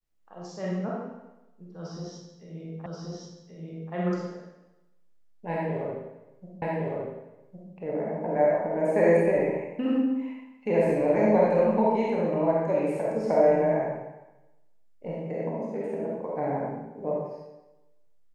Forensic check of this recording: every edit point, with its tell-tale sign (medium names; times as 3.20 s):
2.86 s: repeat of the last 1.08 s
6.62 s: repeat of the last 1.11 s